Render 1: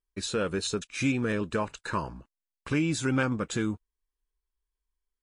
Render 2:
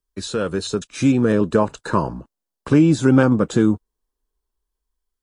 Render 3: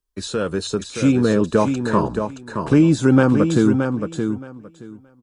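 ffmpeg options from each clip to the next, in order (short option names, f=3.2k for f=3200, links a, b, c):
-filter_complex "[0:a]equalizer=f=2.3k:t=o:w=0.66:g=-7.5,acrossover=split=110|950|4600[a][b][c][d];[b]dynaudnorm=f=410:g=5:m=8dB[e];[d]alimiter=level_in=8dB:limit=-24dB:level=0:latency=1,volume=-8dB[f];[a][e][c][f]amix=inputs=4:normalize=0,volume=6dB"
-af "aecho=1:1:622|1244|1866:0.473|0.0804|0.0137"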